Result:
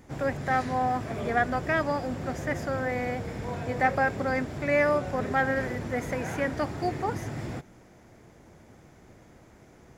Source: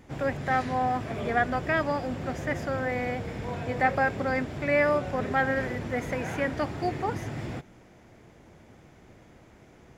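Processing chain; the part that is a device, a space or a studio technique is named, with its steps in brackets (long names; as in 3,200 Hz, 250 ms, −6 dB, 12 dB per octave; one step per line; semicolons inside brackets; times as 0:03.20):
exciter from parts (in parallel at −5 dB: high-pass filter 2,700 Hz 12 dB per octave + soft clipping −36 dBFS, distortion −10 dB + high-pass filter 2,400 Hz 12 dB per octave)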